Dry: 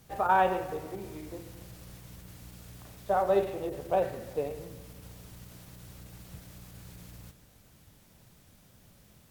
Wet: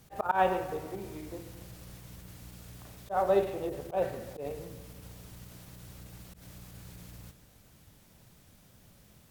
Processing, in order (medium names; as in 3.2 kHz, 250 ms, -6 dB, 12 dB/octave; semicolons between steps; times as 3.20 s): slow attack 102 ms